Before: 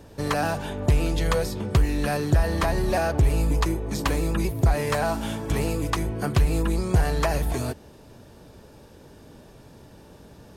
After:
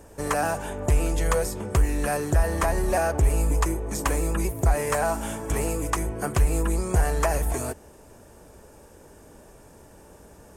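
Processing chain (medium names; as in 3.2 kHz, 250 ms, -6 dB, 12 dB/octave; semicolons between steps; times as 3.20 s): graphic EQ 125/250/4000/8000 Hz -8/-4/-12/+8 dB; trim +1.5 dB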